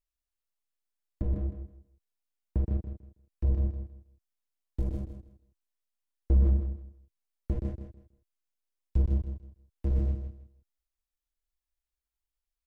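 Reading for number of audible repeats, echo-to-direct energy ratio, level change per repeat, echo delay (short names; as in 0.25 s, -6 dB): 3, -9.0 dB, -13.0 dB, 0.161 s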